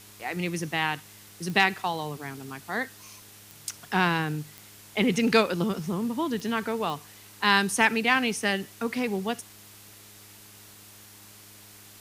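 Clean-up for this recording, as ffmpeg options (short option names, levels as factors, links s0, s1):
-af "adeclick=t=4,bandreject=f=103.5:t=h:w=4,bandreject=f=207:t=h:w=4,bandreject=f=310.5:t=h:w=4,bandreject=f=414:t=h:w=4,afftdn=nr=22:nf=-50"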